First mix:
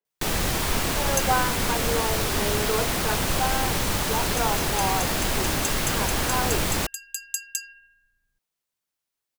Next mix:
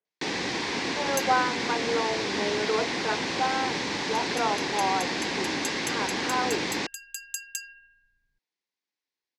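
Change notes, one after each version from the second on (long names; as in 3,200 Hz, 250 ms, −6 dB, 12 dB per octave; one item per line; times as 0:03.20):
first sound: add loudspeaker in its box 260–5,400 Hz, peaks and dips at 290 Hz +4 dB, 630 Hz −9 dB, 1,300 Hz −10 dB, 2,000 Hz +3 dB, 3,000 Hz −4 dB
second sound: add high-shelf EQ 5,000 Hz −7 dB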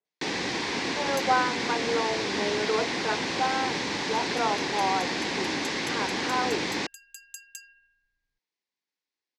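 second sound −8.5 dB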